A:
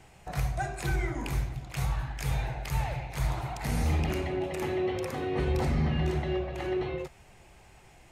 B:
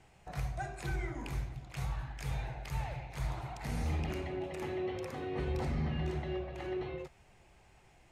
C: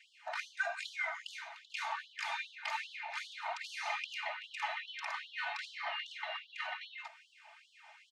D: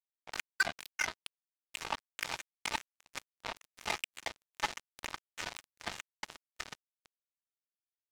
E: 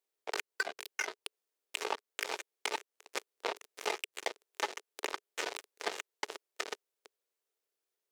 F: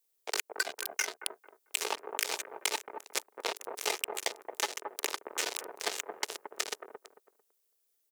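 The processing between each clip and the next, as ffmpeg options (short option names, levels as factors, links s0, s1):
-af "highshelf=f=11000:g=-9,volume=0.447"
-af "lowpass=3900,aecho=1:1:3.3:0.69,afftfilt=real='re*gte(b*sr/1024,600*pow(3000/600,0.5+0.5*sin(2*PI*2.5*pts/sr)))':imag='im*gte(b*sr/1024,600*pow(3000/600,0.5+0.5*sin(2*PI*2.5*pts/sr)))':win_size=1024:overlap=0.75,volume=2.82"
-af "acrusher=bits=4:mix=0:aa=0.5,volume=1.78"
-af "acompressor=threshold=0.0126:ratio=10,highpass=f=420:t=q:w=4.9,volume=2.11"
-filter_complex "[0:a]acrossover=split=1500[s0][s1];[s0]aecho=1:1:223|446|669:0.631|0.145|0.0334[s2];[s1]crystalizer=i=2.5:c=0[s3];[s2][s3]amix=inputs=2:normalize=0"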